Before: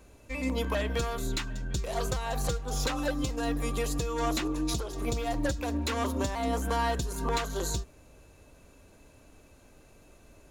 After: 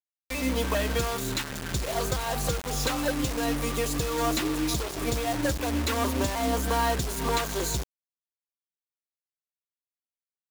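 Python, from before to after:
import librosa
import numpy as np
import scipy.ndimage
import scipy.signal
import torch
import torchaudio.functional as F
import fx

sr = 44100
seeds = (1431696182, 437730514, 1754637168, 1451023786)

y = scipy.signal.sosfilt(scipy.signal.butter(4, 53.0, 'highpass', fs=sr, output='sos'), x)
y = fx.quant_dither(y, sr, seeds[0], bits=6, dither='none')
y = y * 10.0 ** (3.0 / 20.0)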